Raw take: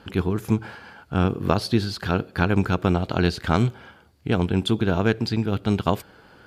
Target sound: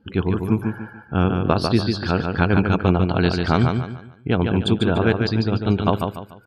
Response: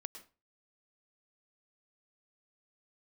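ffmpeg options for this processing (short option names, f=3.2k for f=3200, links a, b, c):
-af "afftdn=nr=25:nf=-41,aecho=1:1:146|292|438|584:0.562|0.186|0.0612|0.0202,volume=2dB"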